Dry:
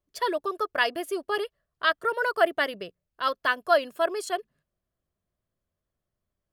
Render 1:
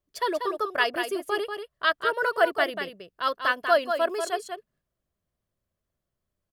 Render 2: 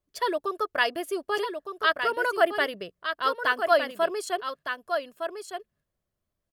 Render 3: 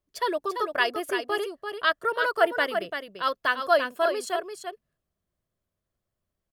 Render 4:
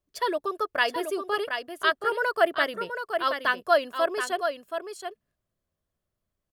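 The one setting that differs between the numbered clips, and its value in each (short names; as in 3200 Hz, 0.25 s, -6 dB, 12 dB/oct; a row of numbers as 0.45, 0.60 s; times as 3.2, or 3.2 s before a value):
echo, time: 0.19, 1.211, 0.341, 0.725 s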